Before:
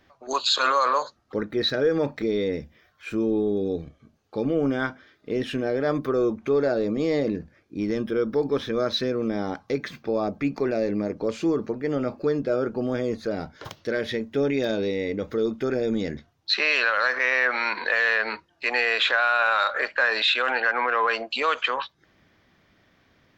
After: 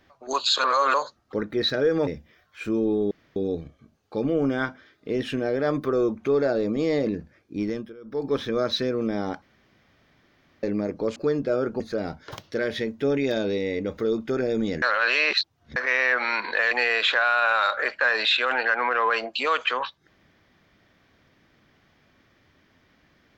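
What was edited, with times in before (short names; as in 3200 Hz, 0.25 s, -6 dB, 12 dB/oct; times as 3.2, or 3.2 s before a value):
0.64–0.94 reverse
2.07–2.53 cut
3.57 insert room tone 0.25 s
7.83–8.55 dip -21.5 dB, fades 0.33 s
9.63–10.84 room tone
11.37–12.16 cut
12.8–13.13 cut
16.15–17.09 reverse
18.04–18.68 cut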